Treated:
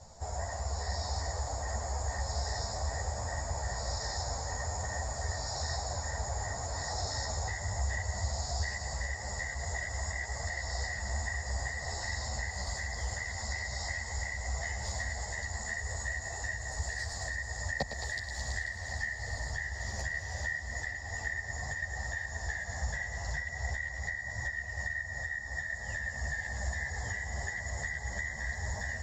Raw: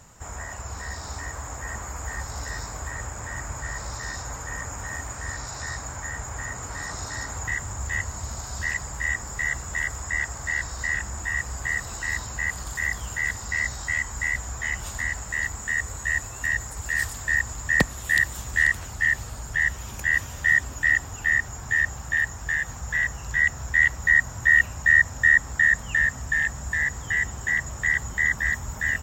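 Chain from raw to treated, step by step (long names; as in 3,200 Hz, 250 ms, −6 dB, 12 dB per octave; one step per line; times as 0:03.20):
parametric band 7,700 Hz +4 dB 1.3 octaves
on a send: feedback echo with a high-pass in the loop 109 ms, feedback 78%, high-pass 920 Hz, level −8.5 dB
on the sum: downward compressor 6 to 1, threshold −26 dBFS, peak gain reduction 14 dB
drawn EQ curve 100 Hz 0 dB, 160 Hz −4 dB, 310 Hz −8 dB, 690 Hz +7 dB, 1,300 Hz −13 dB, 1,900 Hz −8 dB, 2,800 Hz −17 dB, 4,600 Hz +4 dB, 12,000 Hz −26 dB
string-ensemble chorus
level +3 dB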